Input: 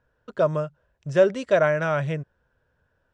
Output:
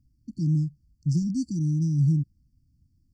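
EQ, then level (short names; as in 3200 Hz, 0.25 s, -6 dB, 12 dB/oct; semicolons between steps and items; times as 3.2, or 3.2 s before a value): brick-wall FIR band-stop 330–4400 Hz; low shelf 280 Hz +6.5 dB; band shelf 2000 Hz +9.5 dB 2.3 oct; +2.5 dB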